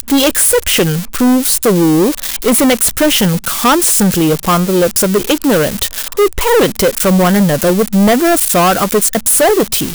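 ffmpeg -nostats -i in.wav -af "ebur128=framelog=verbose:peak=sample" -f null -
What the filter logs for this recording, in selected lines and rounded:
Integrated loudness:
  I:         -10.9 LUFS
  Threshold: -20.9 LUFS
Loudness range:
  LRA:         1.4 LU
  Threshold: -31.1 LUFS
  LRA low:   -11.8 LUFS
  LRA high:  -10.4 LUFS
Sample peak:
  Peak:       -5.5 dBFS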